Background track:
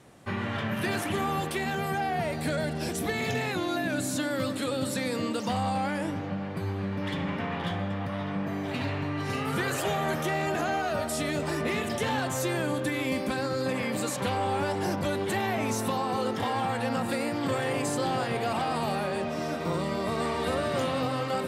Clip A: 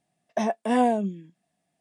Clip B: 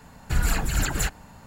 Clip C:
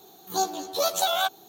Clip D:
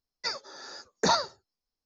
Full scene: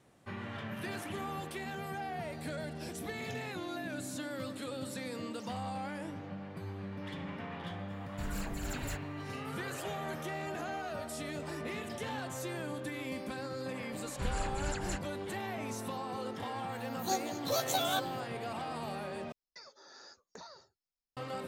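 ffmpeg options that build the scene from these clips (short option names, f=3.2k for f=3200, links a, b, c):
-filter_complex "[2:a]asplit=2[a][b];[0:a]volume=-10.5dB[c];[a]aeval=exprs='0.133*(abs(mod(val(0)/0.133+3,4)-2)-1)':c=same[d];[b]aresample=22050,aresample=44100[e];[4:a]acompressor=threshold=-38dB:ratio=6:attack=3.2:release=140:knee=1:detection=peak[f];[c]asplit=2[g][h];[g]atrim=end=19.324[i];[f]atrim=end=1.85,asetpts=PTS-STARTPTS,volume=-10dB[j];[h]atrim=start=21.166[k];[d]atrim=end=1.46,asetpts=PTS-STARTPTS,volume=-15dB,afade=t=in:d=0.004:c=hsin,afade=t=out:st=1.456:d=0.004:c=hsin,adelay=7880[l];[e]atrim=end=1.46,asetpts=PTS-STARTPTS,volume=-13.5dB,afade=t=in:d=0.004:c=hsin,afade=t=out:st=1.456:d=0.004:c=hsin,adelay=13890[m];[3:a]atrim=end=1.48,asetpts=PTS-STARTPTS,volume=-8dB,afade=t=in:d=0.004:c=hsin,afade=t=out:st=1.476:d=0.004:c=hsin,adelay=16720[n];[i][j]acrossfade=d=0.004:c1=hsin:c2=hsin[o];[o][k]acrossfade=d=0.004:c1=hsin:c2=hsin[p];[p][l][m][n]amix=inputs=4:normalize=0"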